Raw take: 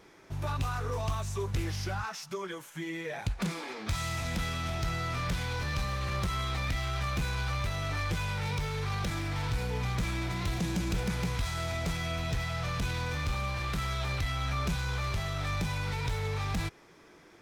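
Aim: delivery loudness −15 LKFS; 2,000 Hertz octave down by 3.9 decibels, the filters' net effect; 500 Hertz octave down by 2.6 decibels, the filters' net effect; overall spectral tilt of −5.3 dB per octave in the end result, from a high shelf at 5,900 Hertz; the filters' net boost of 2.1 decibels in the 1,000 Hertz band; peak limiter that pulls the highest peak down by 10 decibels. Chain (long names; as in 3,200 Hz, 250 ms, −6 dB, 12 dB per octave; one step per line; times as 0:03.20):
parametric band 500 Hz −5 dB
parametric band 1,000 Hz +6 dB
parametric band 2,000 Hz −6 dB
high-shelf EQ 5,900 Hz −4.5 dB
level +24.5 dB
brickwall limiter −7 dBFS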